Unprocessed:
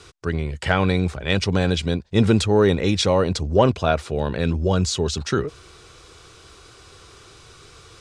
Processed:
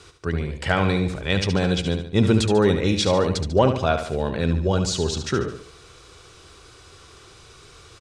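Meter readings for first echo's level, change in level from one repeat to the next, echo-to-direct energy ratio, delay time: −8.5 dB, −6.5 dB, −7.5 dB, 72 ms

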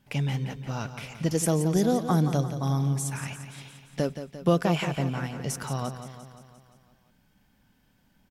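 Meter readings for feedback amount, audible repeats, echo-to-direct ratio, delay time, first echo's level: 60%, 6, −8.5 dB, 174 ms, −10.5 dB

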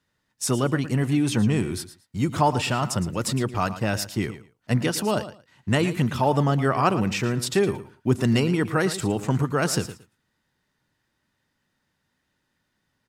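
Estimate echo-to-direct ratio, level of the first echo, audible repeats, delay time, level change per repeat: −13.5 dB, −13.5 dB, 2, 113 ms, −15.0 dB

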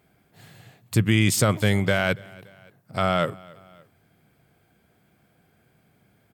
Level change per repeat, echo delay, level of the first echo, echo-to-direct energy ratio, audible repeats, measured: −5.5 dB, 286 ms, −23.5 dB, −22.5 dB, 2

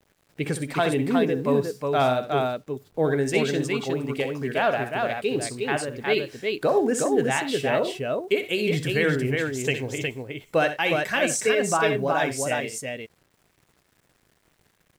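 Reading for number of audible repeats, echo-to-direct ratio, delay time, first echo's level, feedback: 2, −2.5 dB, 63 ms, −10.5 dB, repeats not evenly spaced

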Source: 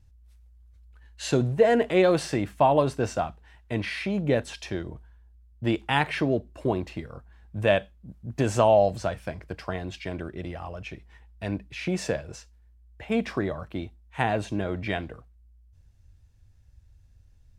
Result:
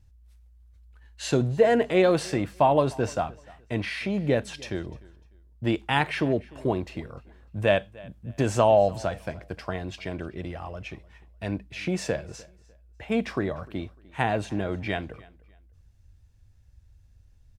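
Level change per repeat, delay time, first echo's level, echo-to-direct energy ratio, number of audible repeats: −11.5 dB, 300 ms, −23.0 dB, −22.5 dB, 2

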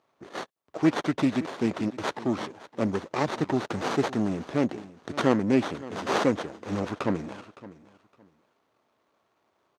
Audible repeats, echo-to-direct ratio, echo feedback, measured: 2, −18.0 dB, 22%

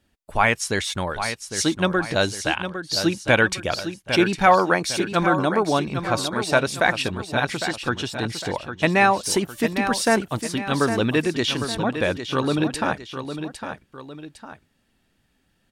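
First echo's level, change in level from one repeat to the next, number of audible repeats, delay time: −9.0 dB, −7.5 dB, 2, 806 ms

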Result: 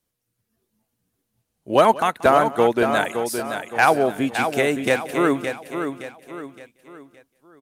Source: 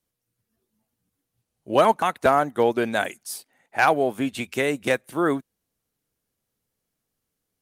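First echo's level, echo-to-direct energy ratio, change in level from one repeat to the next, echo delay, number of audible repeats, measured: −19.5 dB, −6.5 dB, repeats not evenly spaced, 182 ms, 6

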